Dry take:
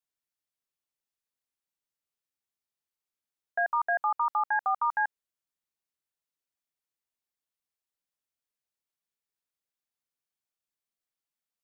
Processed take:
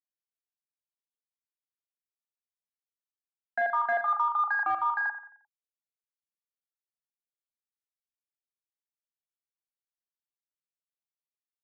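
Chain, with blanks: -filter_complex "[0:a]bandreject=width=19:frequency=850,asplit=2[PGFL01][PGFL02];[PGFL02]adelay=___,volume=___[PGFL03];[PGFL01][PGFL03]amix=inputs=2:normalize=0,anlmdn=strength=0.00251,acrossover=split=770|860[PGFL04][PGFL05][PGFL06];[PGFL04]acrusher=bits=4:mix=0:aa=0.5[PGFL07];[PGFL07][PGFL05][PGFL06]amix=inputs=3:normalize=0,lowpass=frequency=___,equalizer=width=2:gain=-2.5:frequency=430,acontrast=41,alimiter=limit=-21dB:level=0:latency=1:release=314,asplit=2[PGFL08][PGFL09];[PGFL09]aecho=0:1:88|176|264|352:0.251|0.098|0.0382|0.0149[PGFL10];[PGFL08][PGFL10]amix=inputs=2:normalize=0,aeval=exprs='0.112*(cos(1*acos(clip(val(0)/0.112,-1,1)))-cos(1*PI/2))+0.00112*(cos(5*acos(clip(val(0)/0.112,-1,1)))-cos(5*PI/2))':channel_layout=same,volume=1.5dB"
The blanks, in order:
39, -4.5dB, 1.7k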